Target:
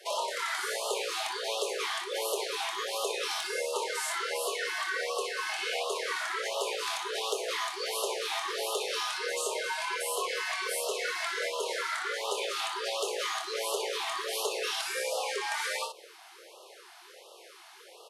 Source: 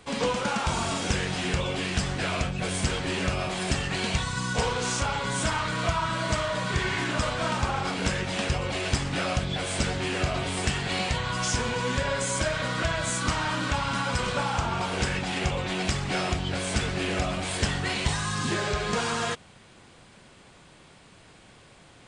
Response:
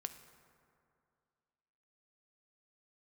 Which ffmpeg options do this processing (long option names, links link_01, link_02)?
-filter_complex "[0:a]afreqshift=270,acrossover=split=100|2200[link_01][link_02][link_03];[link_03]aeval=exprs='clip(val(0),-1,0.0841)':channel_layout=same[link_04];[link_01][link_02][link_04]amix=inputs=3:normalize=0,asetrate=53802,aresample=44100,aecho=1:1:25|60:0.562|0.422,acompressor=threshold=-29dB:ratio=4,afftfilt=real='re*(1-between(b*sr/1024,440*pow(1900/440,0.5+0.5*sin(2*PI*1.4*pts/sr))/1.41,440*pow(1900/440,0.5+0.5*sin(2*PI*1.4*pts/sr))*1.41))':imag='im*(1-between(b*sr/1024,440*pow(1900/440,0.5+0.5*sin(2*PI*1.4*pts/sr))/1.41,440*pow(1900/440,0.5+0.5*sin(2*PI*1.4*pts/sr))*1.41))':win_size=1024:overlap=0.75"